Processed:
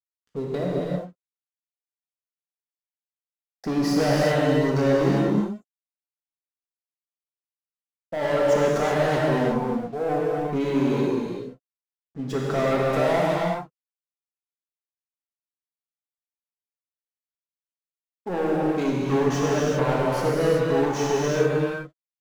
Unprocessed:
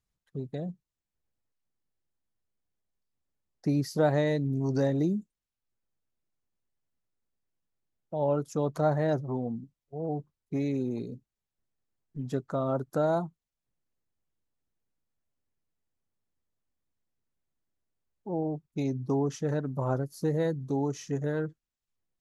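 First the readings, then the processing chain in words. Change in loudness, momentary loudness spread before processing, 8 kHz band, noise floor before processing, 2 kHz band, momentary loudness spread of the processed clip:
+7.5 dB, 12 LU, can't be measured, below −85 dBFS, +13.5 dB, 12 LU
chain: mid-hump overdrive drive 29 dB, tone 3,000 Hz, clips at −12.5 dBFS
dead-zone distortion −42 dBFS
reverb whose tail is shaped and stops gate 420 ms flat, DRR −5 dB
level −6 dB

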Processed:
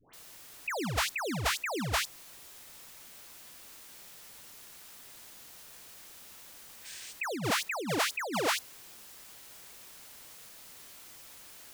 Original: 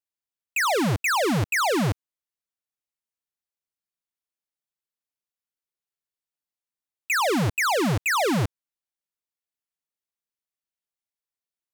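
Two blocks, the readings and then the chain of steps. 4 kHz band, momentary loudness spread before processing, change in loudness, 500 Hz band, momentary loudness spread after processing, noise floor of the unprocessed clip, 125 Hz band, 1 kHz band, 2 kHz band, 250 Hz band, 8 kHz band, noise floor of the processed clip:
−3.5 dB, 6 LU, −9.0 dB, −10.0 dB, 18 LU, below −85 dBFS, −13.0 dB, −9.5 dB, −8.5 dB, −11.5 dB, −4.5 dB, −52 dBFS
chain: high-pass filter sweep 63 Hz → 710 Hz, 0:05.62–0:09.37
background noise white −58 dBFS
gain on a spectral selection 0:06.73–0:07.00, 1,500–9,400 Hz +10 dB
all-pass dispersion highs, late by 136 ms, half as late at 1,100 Hz
in parallel at −2 dB: brickwall limiter −18.5 dBFS, peak gain reduction 9 dB
on the sum: compressor whose output falls as the input rises −26 dBFS, ratio −1
level −6 dB

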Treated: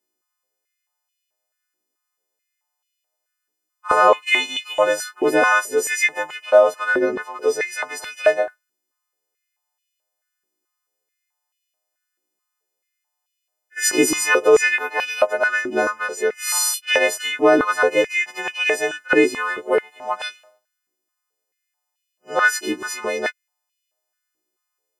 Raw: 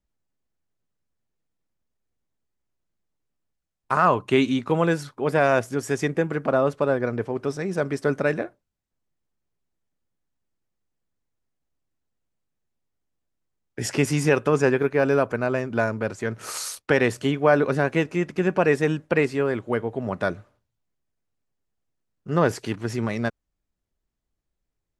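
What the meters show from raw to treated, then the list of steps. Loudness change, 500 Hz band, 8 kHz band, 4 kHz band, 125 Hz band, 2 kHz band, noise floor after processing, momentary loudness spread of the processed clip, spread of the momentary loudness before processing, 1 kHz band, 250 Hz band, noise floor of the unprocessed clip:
+4.5 dB, +3.5 dB, +12.5 dB, +10.5 dB, −20.0 dB, +9.0 dB, −80 dBFS, 11 LU, 9 LU, +5.0 dB, −2.0 dB, −82 dBFS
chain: every partial snapped to a pitch grid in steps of 3 semitones
echo ahead of the sound 51 ms −22 dB
high-pass on a step sequencer 4.6 Hz 340–2,800 Hz

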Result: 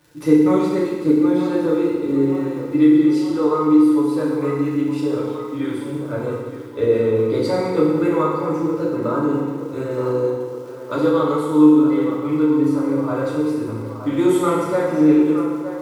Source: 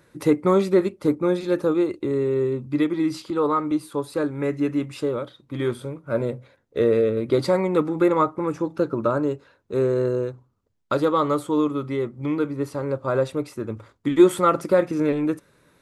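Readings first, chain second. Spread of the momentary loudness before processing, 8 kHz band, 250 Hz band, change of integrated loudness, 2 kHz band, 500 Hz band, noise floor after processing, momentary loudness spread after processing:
9 LU, can't be measured, +7.5 dB, +4.5 dB, +1.5 dB, +2.0 dB, −31 dBFS, 11 LU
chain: surface crackle 150 per second −36 dBFS
on a send: feedback echo with a band-pass in the loop 918 ms, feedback 73%, band-pass 860 Hz, level −9 dB
on the sum: feedback delay network reverb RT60 1.4 s, low-frequency decay 1.3×, high-frequency decay 0.95×, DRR −6 dB
level −6 dB

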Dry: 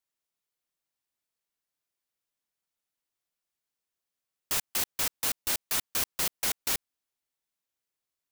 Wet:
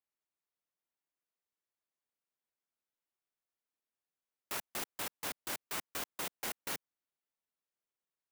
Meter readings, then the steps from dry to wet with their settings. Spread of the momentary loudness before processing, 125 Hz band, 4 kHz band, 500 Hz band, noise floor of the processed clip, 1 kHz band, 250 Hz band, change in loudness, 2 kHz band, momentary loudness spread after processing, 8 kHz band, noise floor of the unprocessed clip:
3 LU, −8.5 dB, −10.5 dB, −4.0 dB, below −85 dBFS, −4.0 dB, −4.5 dB, −11.0 dB, −6.5 dB, 3 LU, −12.0 dB, below −85 dBFS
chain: high-pass filter 190 Hz 12 dB per octave
high-shelf EQ 4,900 Hz −8.5 dB
converter with an unsteady clock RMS 0.06 ms
level −4 dB

